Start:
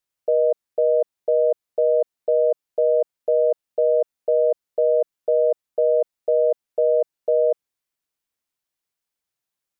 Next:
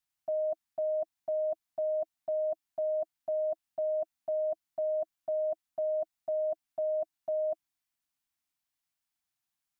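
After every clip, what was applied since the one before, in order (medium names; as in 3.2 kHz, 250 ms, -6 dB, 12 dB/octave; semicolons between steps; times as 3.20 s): elliptic band-stop 320–660 Hz, stop band 40 dB; trim -2.5 dB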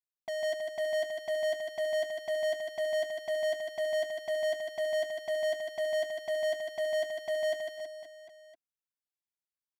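waveshaping leveller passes 5; reverse bouncing-ball echo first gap 150 ms, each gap 1.15×, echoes 5; trim -7 dB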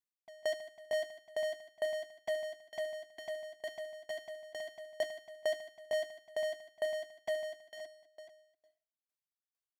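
plate-style reverb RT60 0.68 s, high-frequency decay 0.9×, pre-delay 90 ms, DRR 14 dB; sawtooth tremolo in dB decaying 2.2 Hz, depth 27 dB; trim +1 dB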